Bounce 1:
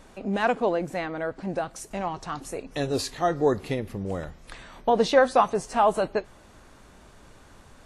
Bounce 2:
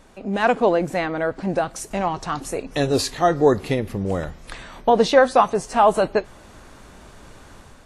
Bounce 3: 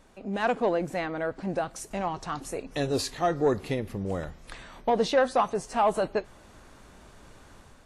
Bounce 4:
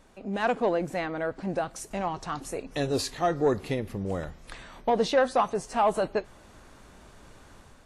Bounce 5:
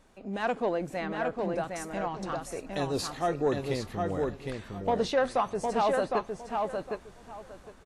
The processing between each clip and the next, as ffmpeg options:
-af "dynaudnorm=f=160:g=5:m=7dB"
-af "asoftclip=type=tanh:threshold=-6.5dB,volume=-7dB"
-af anull
-filter_complex "[0:a]asplit=2[a][b];[b]adelay=759,lowpass=f=4.2k:p=1,volume=-3.5dB,asplit=2[c][d];[d]adelay=759,lowpass=f=4.2k:p=1,volume=0.2,asplit=2[e][f];[f]adelay=759,lowpass=f=4.2k:p=1,volume=0.2[g];[a][c][e][g]amix=inputs=4:normalize=0,volume=-3.5dB"

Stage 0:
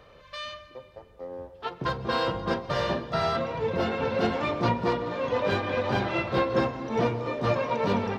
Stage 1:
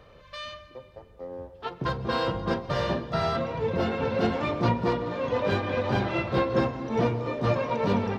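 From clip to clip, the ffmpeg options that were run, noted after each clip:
-af "lowshelf=f=320:g=5,volume=-1.5dB"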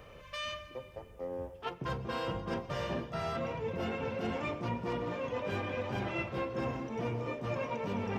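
-af "areverse,acompressor=threshold=-33dB:ratio=6,areverse,aexciter=amount=1.6:drive=1.6:freq=2.2k"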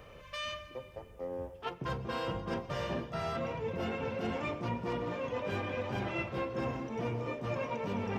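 -af anull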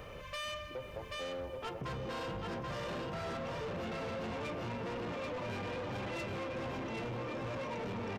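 -filter_complex "[0:a]asplit=2[a][b];[b]aecho=0:1:783|1566|2349|3132:0.631|0.164|0.0427|0.0111[c];[a][c]amix=inputs=2:normalize=0,asoftclip=type=tanh:threshold=-37.5dB,acompressor=threshold=-43dB:ratio=6,volume=5dB"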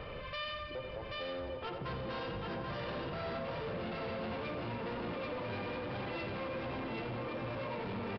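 -af "aecho=1:1:87|174|261|348|435|522|609:0.335|0.191|0.109|0.062|0.0354|0.0202|0.0115,alimiter=level_in=13dB:limit=-24dB:level=0:latency=1:release=139,volume=-13dB,aresample=11025,aresample=44100,volume=3.5dB"

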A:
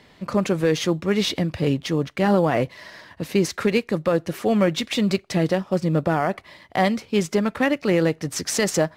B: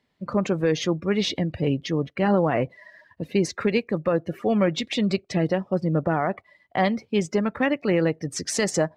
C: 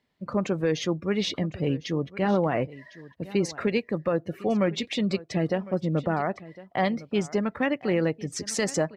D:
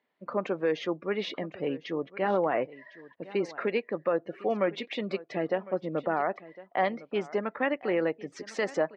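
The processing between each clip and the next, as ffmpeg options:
-af "afftdn=nr=19:nf=-36,volume=-2dB"
-af "aecho=1:1:1056:0.119,volume=-3dB"
-af "highpass=360,lowpass=2.5k"

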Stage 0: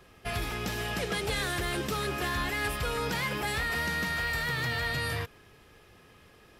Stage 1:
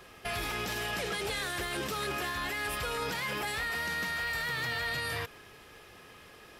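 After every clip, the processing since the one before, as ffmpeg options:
-af "lowshelf=f=290:g=-8.5,alimiter=level_in=8dB:limit=-24dB:level=0:latency=1:release=38,volume=-8dB,volume=6dB"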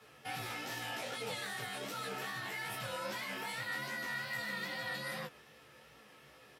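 -filter_complex "[0:a]asplit=2[a][b];[b]adelay=13,volume=-2.5dB[c];[a][c]amix=inputs=2:normalize=0,flanger=delay=17.5:depth=7.6:speed=2.5,afreqshift=60,volume=-5.5dB"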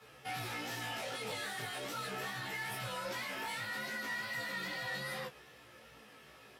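-filter_complex "[0:a]asplit=2[a][b];[b]asoftclip=type=hard:threshold=-35dB,volume=-5dB[c];[a][c]amix=inputs=2:normalize=0,flanger=delay=15.5:depth=3.1:speed=0.39,asoftclip=type=tanh:threshold=-33.5dB,volume=1dB"

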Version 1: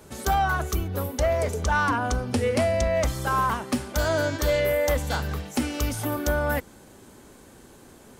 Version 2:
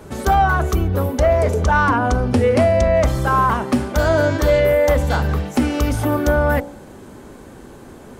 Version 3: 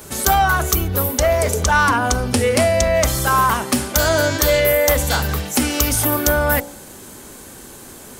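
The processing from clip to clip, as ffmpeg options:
-filter_complex "[0:a]highshelf=f=2.4k:g=-11,bandreject=f=57.29:t=h:w=4,bandreject=f=114.58:t=h:w=4,bandreject=f=171.87:t=h:w=4,bandreject=f=229.16:t=h:w=4,bandreject=f=286.45:t=h:w=4,bandreject=f=343.74:t=h:w=4,bandreject=f=401.03:t=h:w=4,bandreject=f=458.32:t=h:w=4,bandreject=f=515.61:t=h:w=4,bandreject=f=572.9:t=h:w=4,bandreject=f=630.19:t=h:w=4,bandreject=f=687.48:t=h:w=4,bandreject=f=744.77:t=h:w=4,bandreject=f=802.06:t=h:w=4,bandreject=f=859.35:t=h:w=4,bandreject=f=916.64:t=h:w=4,bandreject=f=973.93:t=h:w=4,asplit=2[a][b];[b]alimiter=level_in=1dB:limit=-24dB:level=0:latency=1:release=25,volume=-1dB,volume=-3dB[c];[a][c]amix=inputs=2:normalize=0,volume=7dB"
-af "crystalizer=i=7:c=0,volume=-3dB"

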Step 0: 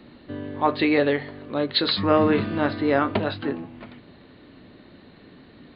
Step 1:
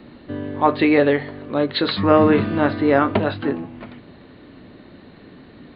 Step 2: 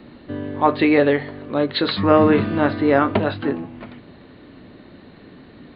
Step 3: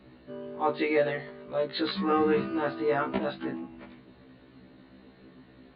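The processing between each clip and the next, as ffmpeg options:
-filter_complex "[0:a]acrossover=split=4500[a][b];[b]acompressor=threshold=-53dB:ratio=4:attack=1:release=60[c];[a][c]amix=inputs=2:normalize=0,highshelf=f=3.6k:g=-6.5,volume=5dB"
-af anull
-af "aresample=11025,aresample=44100,afftfilt=real='re*1.73*eq(mod(b,3),0)':imag='im*1.73*eq(mod(b,3),0)':win_size=2048:overlap=0.75,volume=-7.5dB"

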